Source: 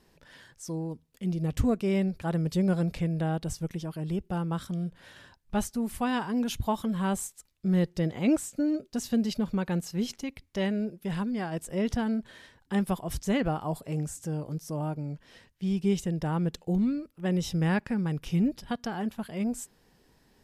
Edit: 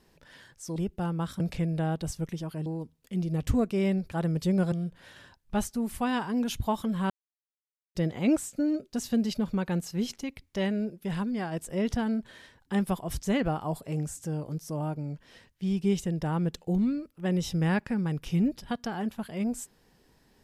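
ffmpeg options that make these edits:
ffmpeg -i in.wav -filter_complex "[0:a]asplit=7[link_01][link_02][link_03][link_04][link_05][link_06][link_07];[link_01]atrim=end=0.762[link_08];[link_02]atrim=start=4.078:end=4.722[link_09];[link_03]atrim=start=2.818:end=4.082[link_10];[link_04]atrim=start=0.758:end=2.822[link_11];[link_05]atrim=start=4.718:end=7.1,asetpts=PTS-STARTPTS,afade=type=out:start_time=2.378:duration=0.004:curve=hsin[link_12];[link_06]atrim=start=7.1:end=7.95,asetpts=PTS-STARTPTS,volume=0[link_13];[link_07]atrim=start=7.95,asetpts=PTS-STARTPTS,afade=type=in:duration=0.004:curve=hsin[link_14];[link_08][link_09]acrossfade=duration=0.004:curve1=hsin:curve2=hsin[link_15];[link_15][link_10]acrossfade=duration=0.004:curve1=hsin:curve2=hsin[link_16];[link_16][link_11]acrossfade=duration=0.004:curve1=hsin:curve2=hsin[link_17];[link_12][link_13][link_14]concat=n=3:v=0:a=1[link_18];[link_17][link_18]acrossfade=duration=0.004:curve1=hsin:curve2=hsin" out.wav

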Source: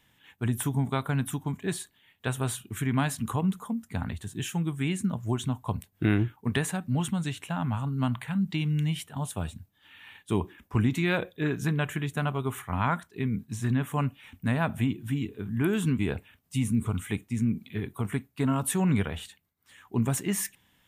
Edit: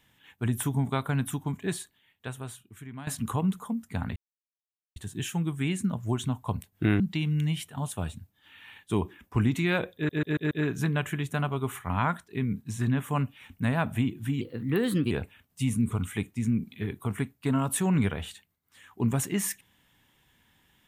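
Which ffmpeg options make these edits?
ffmpeg -i in.wav -filter_complex "[0:a]asplit=10[link_01][link_02][link_03][link_04][link_05][link_06][link_07][link_08][link_09][link_10];[link_01]atrim=end=3.07,asetpts=PTS-STARTPTS,afade=type=out:start_time=1.69:duration=1.38:curve=qua:silence=0.16788[link_11];[link_02]atrim=start=3.07:end=4.16,asetpts=PTS-STARTPTS,afade=type=in:duration=0.004:curve=hsin:silence=0.16788,afade=type=out:start_time=1.086:duration=0.004:curve=hsin,apad=pad_dur=0.8[link_12];[link_03]atrim=start=4.16:end=6.202,asetpts=PTS-STARTPTS,afade=type=in:duration=0.004:curve=hsin[link_13];[link_04]atrim=start=8.388:end=11.482[link_14];[link_05]atrim=start=11.338:end=11.482[link_15];[link_06]atrim=start=11.338:end=11.482[link_16];[link_07]atrim=start=11.338:end=11.482[link_17];[link_08]atrim=start=11.338:end=15.244[link_18];[link_09]atrim=start=15.24:end=16.05,asetpts=PTS-STARTPTS,asetrate=51156,aresample=44100[link_19];[link_10]atrim=start=16.046[link_20];[link_11][link_12][link_13]concat=n=3:v=0:a=1[link_21];[link_21][link_14]acrossfade=duration=0.004:curve1=hsin:curve2=hsin[link_22];[link_22][link_15]acrossfade=duration=0.004:curve1=hsin:curve2=hsin[link_23];[link_23][link_16]acrossfade=duration=0.004:curve1=hsin:curve2=hsin[link_24];[link_24][link_17]acrossfade=duration=0.004:curve1=hsin:curve2=hsin[link_25];[link_25][link_18]acrossfade=duration=0.004:curve1=hsin:curve2=hsin[link_26];[link_26][link_19]acrossfade=duration=0.004:curve1=hsin:curve2=hsin[link_27];[link_27][link_20]acrossfade=duration=0.004:curve1=hsin:curve2=hsin" out.wav

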